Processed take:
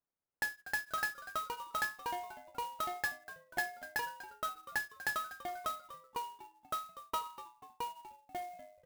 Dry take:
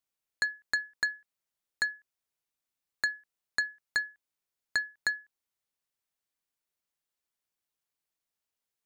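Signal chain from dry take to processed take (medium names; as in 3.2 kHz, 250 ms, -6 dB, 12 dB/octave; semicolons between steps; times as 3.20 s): median filter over 15 samples; ever faster or slower copies 375 ms, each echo -5 st, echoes 3; on a send: frequency-shifting echo 243 ms, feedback 48%, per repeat -99 Hz, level -16.5 dB; on the sum: level-controlled noise filter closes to 1.6 kHz, open at -32.5 dBFS; in parallel at -2 dB: compression, threshold -43 dBFS, peak gain reduction 14.5 dB; on the sum: flange 0.29 Hz, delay 6.8 ms, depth 3.5 ms, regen -75%; sampling jitter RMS 0.027 ms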